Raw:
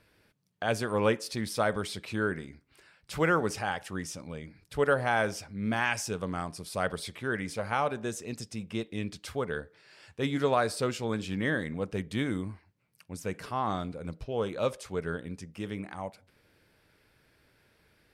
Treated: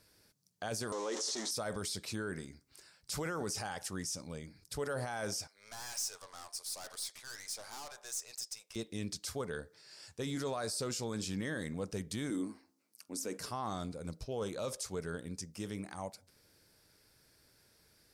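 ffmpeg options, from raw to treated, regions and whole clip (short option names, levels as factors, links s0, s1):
-filter_complex "[0:a]asettb=1/sr,asplit=3[s0][s1][s2];[s0]atrim=end=0.924[s3];[s1]atrim=start=0.92:end=1.51,asetpts=PTS-STARTPTS,afade=t=in:d=0.004:c=qsin,afade=t=out:st=0.586:d=0.004:c=qsin,aeval=exprs='val(0)+0.5*0.0376*sgn(val(0))':c=same,highpass=f=310:w=0.5412,highpass=f=310:w=1.3066,equalizer=f=520:t=q:w=4:g=-4,equalizer=f=1500:t=q:w=4:g=-6,equalizer=f=2500:t=q:w=4:g=-9,equalizer=f=4700:t=q:w=4:g=-9,lowpass=f=6800:w=0.5412,lowpass=f=6800:w=1.3066[s4];[s2]atrim=start=1.506[s5];[s3][s4]acrossfade=d=0.004:c1=hsin:c2=qsin[s6];[s6][s5]acrossfade=d=0.004:c1=qsin:c2=hsin,asettb=1/sr,asplit=3[s7][s8][s9];[s7]atrim=end=5.474[s10];[s8]atrim=start=5.47:end=8.76,asetpts=PTS-STARTPTS,afade=t=in:d=0.004:c=qsin,afade=t=out:st=3.286:d=0.004:c=qsin,highpass=f=660:w=0.5412,highpass=f=660:w=1.3066,aeval=exprs='(tanh(126*val(0)+0.4)-tanh(0.4))/126':c=same[s11];[s9]atrim=start=8.756[s12];[s10][s11]acrossfade=d=0.004:c1=hsin:c2=qsin[s13];[s13][s12]acrossfade=d=0.004:c1=qsin:c2=hsin,asettb=1/sr,asplit=3[s14][s15][s16];[s14]atrim=end=12.304[s17];[s15]atrim=start=12.3:end=13.37,asetpts=PTS-STARTPTS,afade=t=in:d=0.004:c=qsin,afade=t=out:st=1.066:d=0.004:c=qsin,lowshelf=f=180:t=q:w=3:g=-13,bandreject=f=66.93:t=h:w=4,bandreject=f=133.86:t=h:w=4,bandreject=f=200.79:t=h:w=4,bandreject=f=267.72:t=h:w=4,bandreject=f=334.65:t=h:w=4,bandreject=f=401.58:t=h:w=4,bandreject=f=468.51:t=h:w=4,bandreject=f=535.44:t=h:w=4,bandreject=f=602.37:t=h:w=4,bandreject=f=669.3:t=h:w=4,bandreject=f=736.23:t=h:w=4,bandreject=f=803.16:t=h:w=4,bandreject=f=870.09:t=h:w=4,bandreject=f=937.02:t=h:w=4,bandreject=f=1003.95:t=h:w=4,bandreject=f=1070.88:t=h:w=4,bandreject=f=1137.81:t=h:w=4,bandreject=f=1204.74:t=h:w=4,bandreject=f=1271.67:t=h:w=4,bandreject=f=1338.6:t=h:w=4,bandreject=f=1405.53:t=h:w=4[s18];[s16]atrim=start=13.366[s19];[s17][s18]acrossfade=d=0.004:c1=hsin:c2=qsin[s20];[s20][s19]acrossfade=d=0.004:c1=qsin:c2=hsin,highshelf=f=3900:t=q:w=1.5:g=10.5,alimiter=level_in=1.12:limit=0.0631:level=0:latency=1:release=16,volume=0.891,volume=0.631"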